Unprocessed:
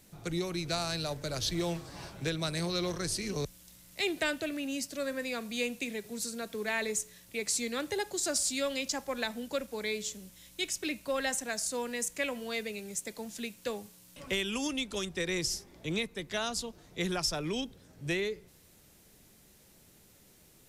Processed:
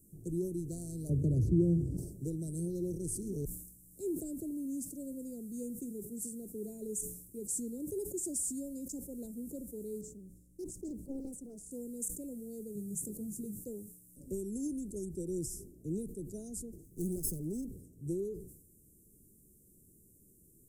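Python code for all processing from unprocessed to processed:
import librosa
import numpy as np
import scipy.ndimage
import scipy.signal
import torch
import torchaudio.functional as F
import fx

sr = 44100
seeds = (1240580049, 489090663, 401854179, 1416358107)

y = fx.chain(x, sr, fx.highpass(hz=62.0, slope=24),
    fx.tilt_eq(slope=-4.0),
    fx.band_squash(depth_pct=70), at=(1.09, 1.97))
y = fx.chain(y, sr, fx.lowpass(hz=2000.0, slope=6),
    fx.doppler_dist(depth_ms=0.63), at=(10.01, 11.71))
y = fx.chain(y, sr, fx.peak_eq(hz=140.0, db=12.5, octaves=0.88),
    fx.doubler(ms=19.0, db=-5.5), at=(12.75, 13.6))
y = fx.chain(y, sr, fx.lower_of_two(delay_ms=0.62),
    fx.high_shelf(hz=8700.0, db=7.0), at=(16.84, 17.66))
y = scipy.signal.sosfilt(scipy.signal.ellip(3, 1.0, 50, [380.0, 8300.0], 'bandstop', fs=sr, output='sos'), y)
y = fx.sustainer(y, sr, db_per_s=73.0)
y = y * librosa.db_to_amplitude(-1.0)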